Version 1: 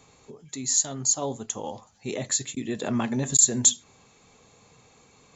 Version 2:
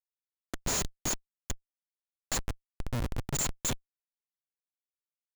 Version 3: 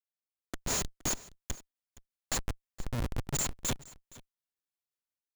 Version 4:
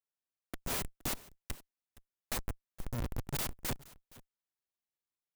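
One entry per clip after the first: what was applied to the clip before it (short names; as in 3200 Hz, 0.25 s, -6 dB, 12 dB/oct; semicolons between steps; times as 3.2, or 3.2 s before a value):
band shelf 580 Hz -15.5 dB 2.4 oct; de-hum 69.67 Hz, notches 12; Schmitt trigger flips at -25.5 dBFS
AGC gain up to 9 dB; tremolo saw down 5.7 Hz, depth 35%; echo 0.468 s -20.5 dB; gain -8.5 dB
clock jitter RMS 0.061 ms; gain -3.5 dB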